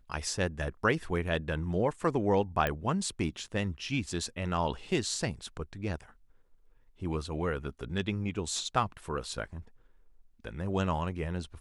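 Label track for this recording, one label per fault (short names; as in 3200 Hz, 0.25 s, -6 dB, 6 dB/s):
2.670000	2.670000	pop -16 dBFS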